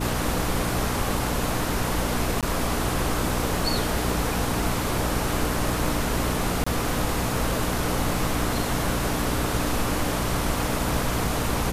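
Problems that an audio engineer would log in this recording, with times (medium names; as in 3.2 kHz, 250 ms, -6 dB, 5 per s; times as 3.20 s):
hum 60 Hz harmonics 5 -30 dBFS
2.41–2.43 s: dropout 17 ms
6.64–6.67 s: dropout 25 ms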